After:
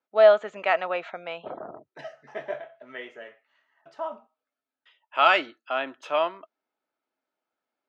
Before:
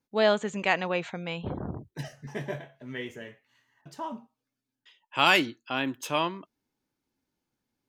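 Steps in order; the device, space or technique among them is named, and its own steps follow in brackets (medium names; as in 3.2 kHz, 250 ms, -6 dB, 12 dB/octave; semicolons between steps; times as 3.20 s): tin-can telephone (band-pass 480–3000 Hz; small resonant body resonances 650/1300 Hz, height 11 dB, ringing for 30 ms)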